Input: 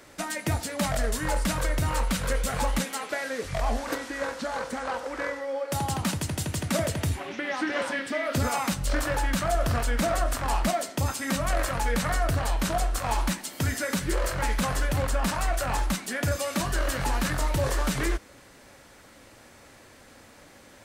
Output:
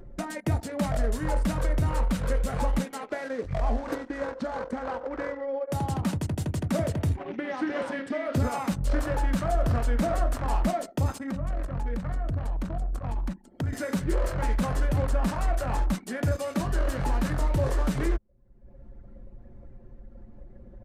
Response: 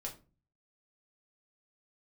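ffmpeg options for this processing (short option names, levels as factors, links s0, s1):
-filter_complex "[0:a]asettb=1/sr,asplit=3[s0][s1][s2];[s0]atrim=end=11.184[s3];[s1]atrim=start=11.18:end=13.73,asetpts=PTS-STARTPTS,afade=t=in:d=0.004:c=qsin,afade=t=out:st=2.546:d=0.004:c=qsin,acrossover=split=130|290|1900[s4][s5][s6][s7];[s4]acompressor=threshold=0.0316:ratio=4[s8];[s5]acompressor=threshold=0.01:ratio=4[s9];[s6]acompressor=threshold=0.01:ratio=4[s10];[s7]acompressor=threshold=0.00708:ratio=4[s11];[s8][s9][s10][s11]amix=inputs=4:normalize=0[s12];[s2]atrim=start=13.726[s13];[s3][s12]acrossfade=d=0.004:c1=hsin:c2=qsin[s14];[s14][s13]acrossfade=d=0.004:c1=qsin:c2=hsin,anlmdn=2.51,acompressor=mode=upward:threshold=0.0447:ratio=2.5,aresample=32000,aresample=44100,tiltshelf=f=1100:g=6,volume=0.631"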